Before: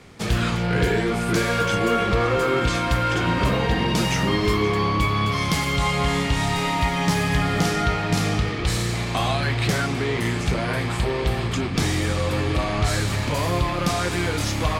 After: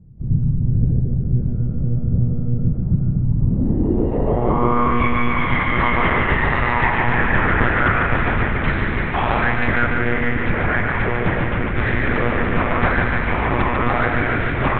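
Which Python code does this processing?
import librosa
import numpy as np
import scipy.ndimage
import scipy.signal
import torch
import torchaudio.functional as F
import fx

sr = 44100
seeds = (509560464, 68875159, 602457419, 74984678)

y = fx.lpc_monotone(x, sr, seeds[0], pitch_hz=120.0, order=10)
y = fx.echo_feedback(y, sr, ms=146, feedback_pct=58, wet_db=-5)
y = fx.filter_sweep_lowpass(y, sr, from_hz=150.0, to_hz=1800.0, start_s=3.37, end_s=5.0, q=2.6)
y = F.gain(torch.from_numpy(y), 1.5).numpy()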